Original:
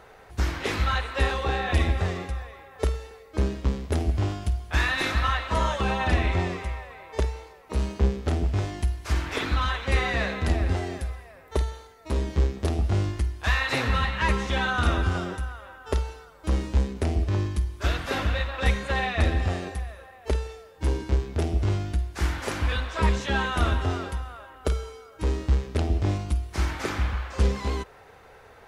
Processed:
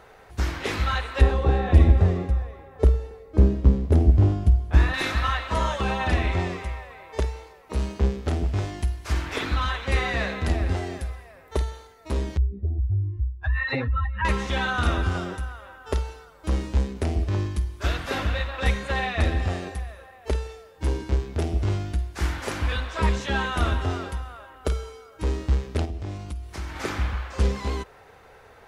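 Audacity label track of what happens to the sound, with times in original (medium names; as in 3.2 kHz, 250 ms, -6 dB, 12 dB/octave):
1.210000	4.940000	tilt shelf lows +8.5 dB, about 800 Hz
12.370000	14.250000	spectral contrast enhancement exponent 2.3
25.850000	26.760000	compression 2:1, threshold -35 dBFS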